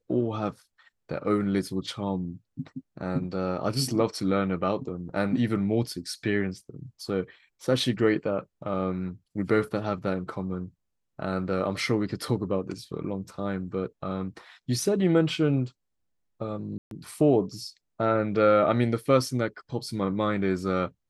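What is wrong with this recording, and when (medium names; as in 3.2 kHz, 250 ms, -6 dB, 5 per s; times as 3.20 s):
16.78–16.91 s: dropout 132 ms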